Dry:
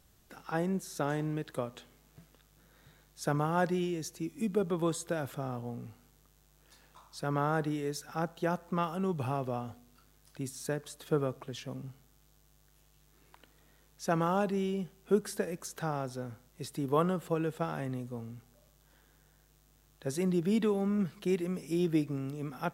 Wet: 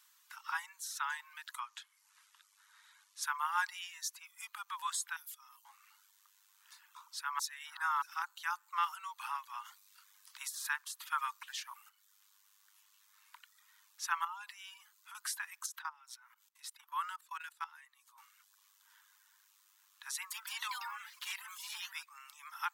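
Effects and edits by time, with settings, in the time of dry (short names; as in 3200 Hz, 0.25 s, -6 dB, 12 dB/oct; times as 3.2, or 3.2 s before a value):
1.6–3.22 brick-wall FIR low-pass 12000 Hz
5.16–5.65 differentiator
7.39–8.02 reverse
9.64–11.88 spectral limiter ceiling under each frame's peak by 12 dB
14.24–15.15 compressor 10:1, threshold -32 dBFS
15.66–18.18 level quantiser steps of 16 dB
20.14–22.19 echoes that change speed 0.165 s, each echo +3 st, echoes 2
whole clip: steep high-pass 910 Hz 96 dB/oct; reverb removal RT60 0.64 s; gain +3.5 dB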